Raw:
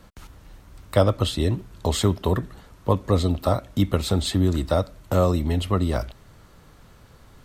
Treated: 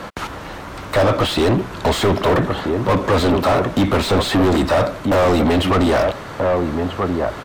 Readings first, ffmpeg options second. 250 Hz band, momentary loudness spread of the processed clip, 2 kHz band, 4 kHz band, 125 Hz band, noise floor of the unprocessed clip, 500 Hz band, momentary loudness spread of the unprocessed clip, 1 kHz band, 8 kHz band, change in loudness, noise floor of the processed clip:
+7.5 dB, 7 LU, +15.5 dB, +7.0 dB, +1.5 dB, -51 dBFS, +8.5 dB, 6 LU, +11.0 dB, +3.0 dB, +6.0 dB, -32 dBFS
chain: -filter_complex "[0:a]asplit=2[a][b];[b]adelay=1283,volume=-13dB,highshelf=f=4k:g=-28.9[c];[a][c]amix=inputs=2:normalize=0,asplit=2[d][e];[e]highpass=f=720:p=1,volume=38dB,asoftclip=type=tanh:threshold=-4dB[f];[d][f]amix=inputs=2:normalize=0,lowpass=f=1.3k:p=1,volume=-6dB,volume=-2.5dB"

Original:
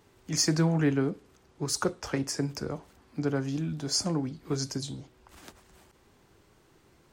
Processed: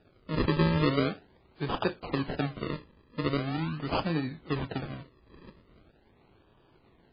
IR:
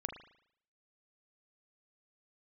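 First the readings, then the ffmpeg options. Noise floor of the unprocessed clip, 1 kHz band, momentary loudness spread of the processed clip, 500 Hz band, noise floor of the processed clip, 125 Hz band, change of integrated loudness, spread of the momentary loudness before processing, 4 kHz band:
-63 dBFS, +5.5 dB, 13 LU, +1.0 dB, -63 dBFS, -0.5 dB, -1.0 dB, 13 LU, -5.0 dB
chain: -af "acrusher=samples=41:mix=1:aa=0.000001:lfo=1:lforange=41:lforate=0.42" -ar 11025 -c:a libmp3lame -b:a 16k

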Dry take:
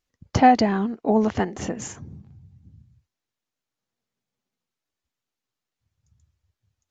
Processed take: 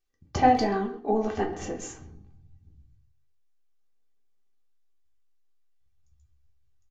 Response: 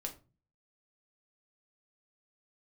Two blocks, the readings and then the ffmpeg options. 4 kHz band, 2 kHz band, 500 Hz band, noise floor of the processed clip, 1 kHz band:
-5.0 dB, -5.5 dB, -3.0 dB, -64 dBFS, -4.0 dB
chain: -filter_complex "[0:a]bandreject=f=360:t=h:w=4,bandreject=f=720:t=h:w=4,bandreject=f=1.08k:t=h:w=4,bandreject=f=1.44k:t=h:w=4,bandreject=f=1.8k:t=h:w=4,bandreject=f=2.16k:t=h:w=4,bandreject=f=2.52k:t=h:w=4,bandreject=f=2.88k:t=h:w=4,bandreject=f=3.24k:t=h:w=4,bandreject=f=3.6k:t=h:w=4,bandreject=f=3.96k:t=h:w=4,bandreject=f=4.32k:t=h:w=4,bandreject=f=4.68k:t=h:w=4,bandreject=f=5.04k:t=h:w=4,bandreject=f=5.4k:t=h:w=4,bandreject=f=5.76k:t=h:w=4,bandreject=f=6.12k:t=h:w=4,bandreject=f=6.48k:t=h:w=4,bandreject=f=6.84k:t=h:w=4,bandreject=f=7.2k:t=h:w=4,bandreject=f=7.56k:t=h:w=4,bandreject=f=7.92k:t=h:w=4,bandreject=f=8.28k:t=h:w=4,bandreject=f=8.64k:t=h:w=4,bandreject=f=9k:t=h:w=4,bandreject=f=9.36k:t=h:w=4,bandreject=f=9.72k:t=h:w=4,bandreject=f=10.08k:t=h:w=4,asubboost=boost=5:cutoff=54,aecho=1:1:2.6:0.47,asplit=2[a][b];[b]adelay=130,highpass=300,lowpass=3.4k,asoftclip=type=hard:threshold=-12dB,volume=-14dB[c];[a][c]amix=inputs=2:normalize=0[d];[1:a]atrim=start_sample=2205[e];[d][e]afir=irnorm=-1:irlink=0,volume=-4dB"

